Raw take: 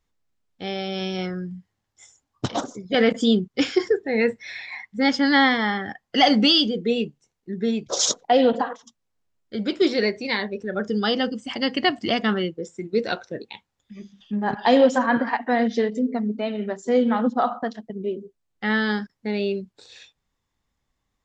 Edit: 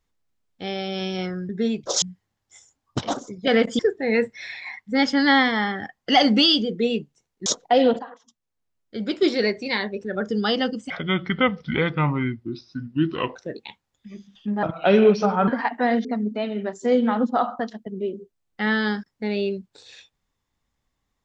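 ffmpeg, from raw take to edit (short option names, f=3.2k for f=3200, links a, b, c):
-filter_complex "[0:a]asplit=11[a][b][c][d][e][f][g][h][i][j][k];[a]atrim=end=1.492[l];[b]atrim=start=7.518:end=8.052[m];[c]atrim=start=1.488:end=3.262[n];[d]atrim=start=3.848:end=7.522[o];[e]atrim=start=8.048:end=8.58,asetpts=PTS-STARTPTS,afade=t=out:st=0.528:d=0.004:c=hsin:silence=0.223872[p];[f]atrim=start=8.58:end=11.494,asetpts=PTS-STARTPTS,afade=t=in:d=1.28:silence=0.223872[q];[g]atrim=start=11.49:end=13.21,asetpts=PTS-STARTPTS,asetrate=30870,aresample=44100[r];[h]atrim=start=13.206:end=14.484[s];[i]atrim=start=14.48:end=15.16,asetpts=PTS-STARTPTS,asetrate=35280,aresample=44100[t];[j]atrim=start=15.156:end=15.732[u];[k]atrim=start=16.078[v];[l][m]acrossfade=d=0.004:c1=hsin:c2=hsin[w];[w][n]acrossfade=d=0.004:c1=hsin:c2=hsin[x];[x][o]acrossfade=d=0.004:c1=hsin:c2=hsin[y];[p][q]concat=n=2:v=0:a=1[z];[y][z]acrossfade=d=0.004:c1=hsin:c2=hsin[aa];[aa][r]acrossfade=d=0.004:c1=hsin:c2=hsin[ab];[ab][s]acrossfade=d=0.004:c1=hsin:c2=hsin[ac];[ac][t]acrossfade=d=0.004:c1=hsin:c2=hsin[ad];[ad][u]acrossfade=d=0.004:c1=hsin:c2=hsin[ae];[ae][v]acrossfade=d=0.004:c1=hsin:c2=hsin"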